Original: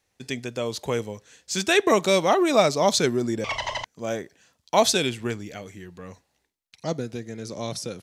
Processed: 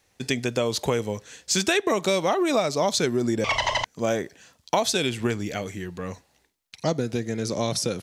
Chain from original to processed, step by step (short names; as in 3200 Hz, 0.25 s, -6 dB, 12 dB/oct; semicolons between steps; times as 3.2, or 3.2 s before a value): compressor 8:1, threshold -27 dBFS, peak gain reduction 14.5 dB; gain +7.5 dB